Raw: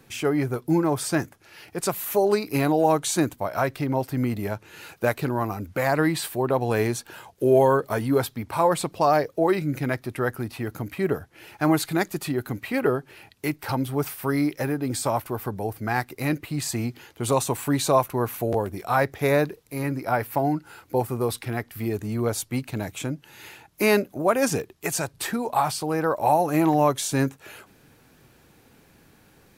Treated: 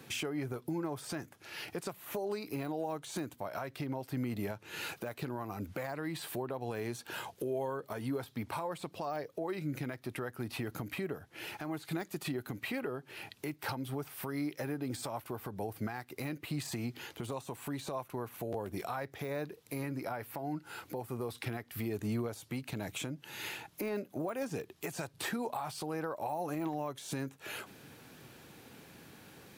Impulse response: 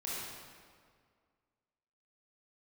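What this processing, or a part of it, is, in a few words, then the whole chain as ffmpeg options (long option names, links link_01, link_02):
broadcast voice chain: -af "highpass=97,deesser=0.65,acompressor=threshold=-34dB:ratio=4,equalizer=frequency=3300:width_type=o:width=0.83:gain=3,alimiter=level_in=4.5dB:limit=-24dB:level=0:latency=1:release=225,volume=-4.5dB,volume=1.5dB"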